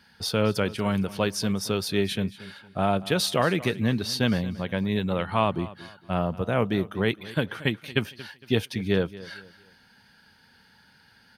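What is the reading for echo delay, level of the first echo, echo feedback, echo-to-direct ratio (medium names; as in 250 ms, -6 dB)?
229 ms, -18.0 dB, 35%, -17.5 dB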